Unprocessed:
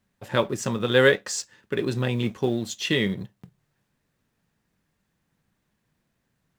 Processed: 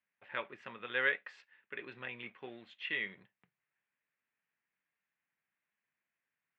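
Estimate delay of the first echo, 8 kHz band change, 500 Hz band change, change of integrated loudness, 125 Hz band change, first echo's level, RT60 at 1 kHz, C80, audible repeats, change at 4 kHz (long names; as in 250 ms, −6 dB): no echo audible, below −40 dB, −21.5 dB, −14.0 dB, −32.0 dB, no echo audible, no reverb audible, no reverb audible, no echo audible, −17.0 dB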